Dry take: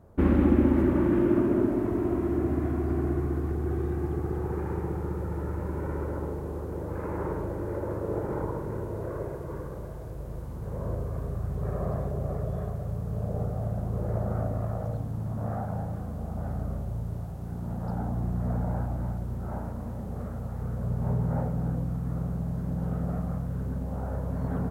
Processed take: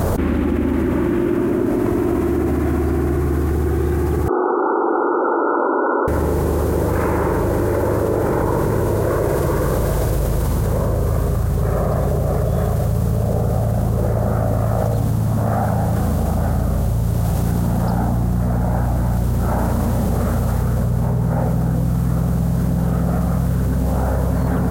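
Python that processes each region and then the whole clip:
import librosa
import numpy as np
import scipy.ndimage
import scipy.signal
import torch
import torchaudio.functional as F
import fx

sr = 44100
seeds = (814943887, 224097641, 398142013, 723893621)

y = fx.chain(x, sr, fx.brickwall_bandpass(low_hz=220.0, high_hz=1500.0),
    fx.tilt_eq(slope=3.5), at=(4.28, 6.08))
y = fx.high_shelf(y, sr, hz=2200.0, db=10.5)
y = fx.env_flatten(y, sr, amount_pct=100)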